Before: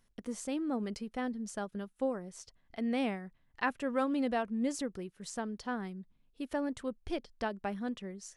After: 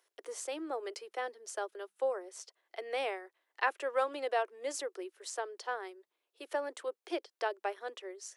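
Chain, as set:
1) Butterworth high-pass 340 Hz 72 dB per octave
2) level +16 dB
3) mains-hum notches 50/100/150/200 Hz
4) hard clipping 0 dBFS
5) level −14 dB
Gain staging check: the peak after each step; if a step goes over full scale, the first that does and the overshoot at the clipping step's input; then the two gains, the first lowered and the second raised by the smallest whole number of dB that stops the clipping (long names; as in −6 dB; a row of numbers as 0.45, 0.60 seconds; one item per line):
−18.0, −2.0, −2.0, −2.0, −16.0 dBFS
no step passes full scale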